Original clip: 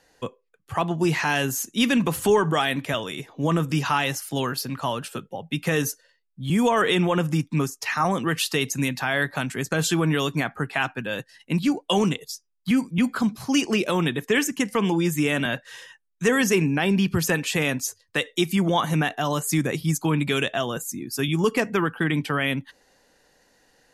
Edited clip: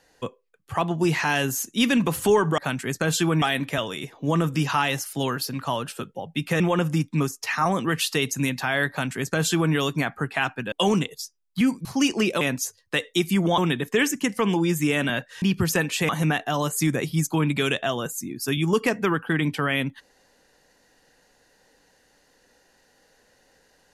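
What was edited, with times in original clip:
5.76–6.99 s: delete
9.29–10.13 s: copy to 2.58 s
11.11–11.82 s: delete
12.95–13.38 s: delete
15.78–16.96 s: delete
17.63–18.80 s: move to 13.94 s

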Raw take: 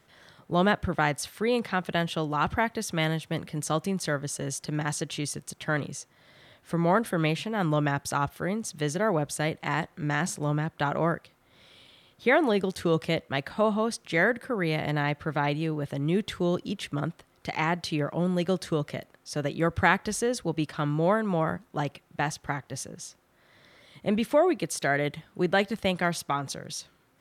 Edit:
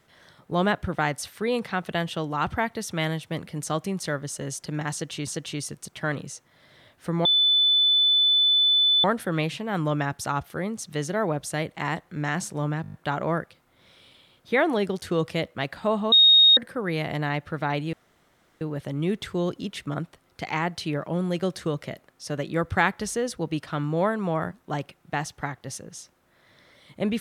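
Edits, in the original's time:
4.92–5.27 s: loop, 2 plays
6.90 s: add tone 3.5 kHz -16.5 dBFS 1.79 s
10.68 s: stutter 0.02 s, 7 plays
13.86–14.31 s: bleep 3.73 kHz -11.5 dBFS
15.67 s: insert room tone 0.68 s

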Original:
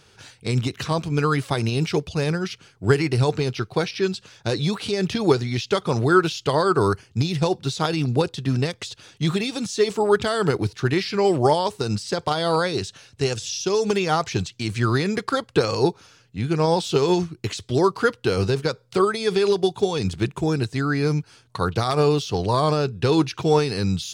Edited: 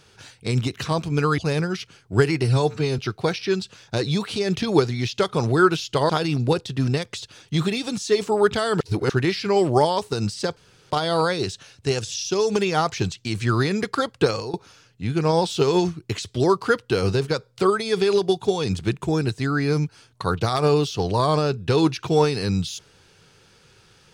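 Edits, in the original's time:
1.38–2.09 s: delete
3.14–3.51 s: stretch 1.5×
6.62–7.78 s: delete
10.49–10.78 s: reverse
12.25 s: insert room tone 0.34 s
15.63–15.88 s: fade out, to -23 dB

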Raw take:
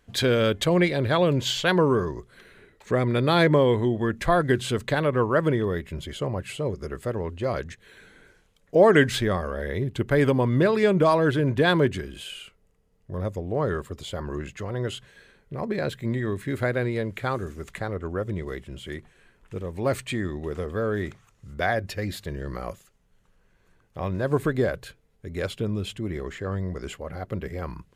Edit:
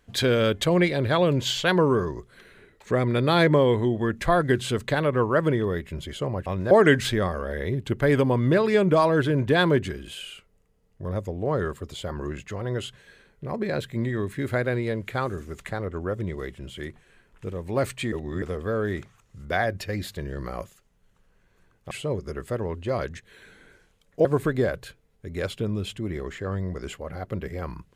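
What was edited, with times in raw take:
6.46–8.80 s: swap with 24.00–24.25 s
20.21–20.51 s: reverse

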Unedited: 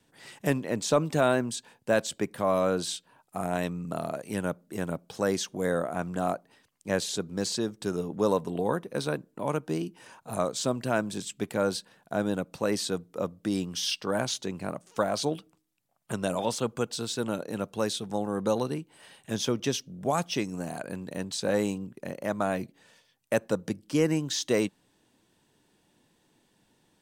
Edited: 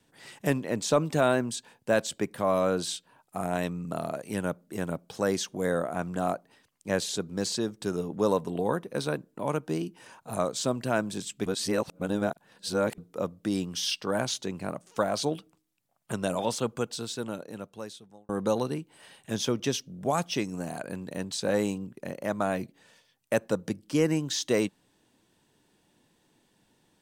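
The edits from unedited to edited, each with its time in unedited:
11.46–12.98 s: reverse
16.65–18.29 s: fade out

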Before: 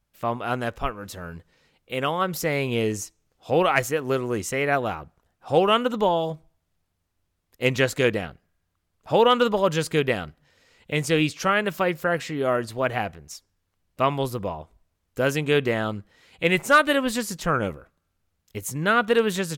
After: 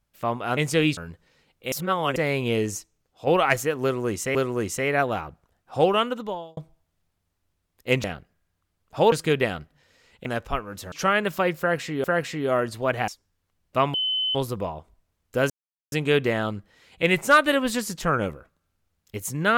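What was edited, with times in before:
0.57–1.23 s: swap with 10.93–11.33 s
1.98–2.42 s: reverse
3.02–3.53 s: fade out, to -6.5 dB
4.09–4.61 s: loop, 2 plays
5.53–6.31 s: fade out
7.78–8.17 s: delete
9.25–9.79 s: delete
12.00–12.45 s: loop, 2 plays
13.04–13.32 s: delete
14.18 s: add tone 3.04 kHz -22 dBFS 0.41 s
15.33 s: insert silence 0.42 s

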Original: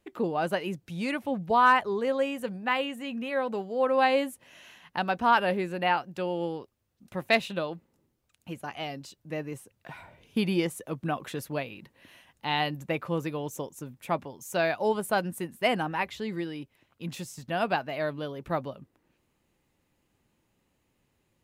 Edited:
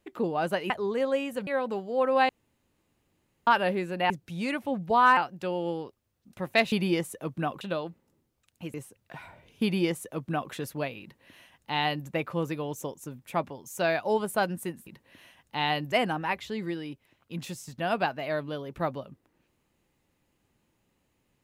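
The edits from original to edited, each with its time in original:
0.70–1.77 s: move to 5.92 s
2.54–3.29 s: delete
4.11–5.29 s: room tone
8.60–9.49 s: delete
10.38–11.27 s: copy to 7.47 s
11.77–12.82 s: copy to 15.62 s

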